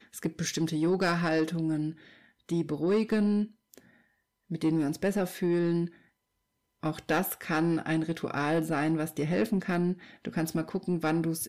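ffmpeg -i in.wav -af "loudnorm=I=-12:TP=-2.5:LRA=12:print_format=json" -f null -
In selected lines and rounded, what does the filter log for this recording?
"input_i" : "-29.9",
"input_tp" : "-19.5",
"input_lra" : "1.2",
"input_thresh" : "-40.2",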